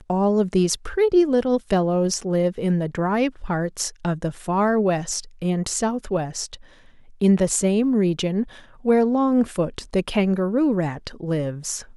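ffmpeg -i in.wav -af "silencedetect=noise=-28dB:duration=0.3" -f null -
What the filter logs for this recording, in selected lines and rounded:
silence_start: 6.55
silence_end: 7.21 | silence_duration: 0.67
silence_start: 8.43
silence_end: 8.85 | silence_duration: 0.42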